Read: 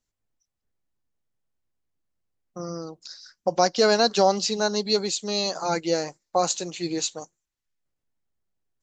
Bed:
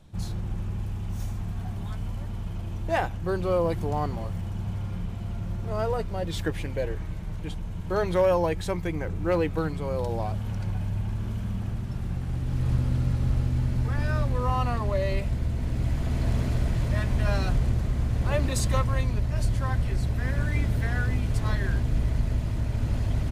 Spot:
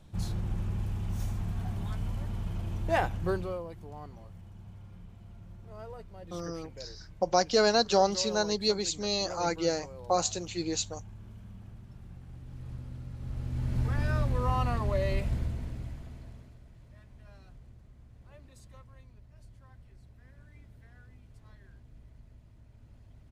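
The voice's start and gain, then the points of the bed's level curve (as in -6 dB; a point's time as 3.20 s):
3.75 s, -4.5 dB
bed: 3.30 s -1.5 dB
3.66 s -17 dB
13.11 s -17 dB
13.79 s -3 dB
15.37 s -3 dB
16.59 s -28.5 dB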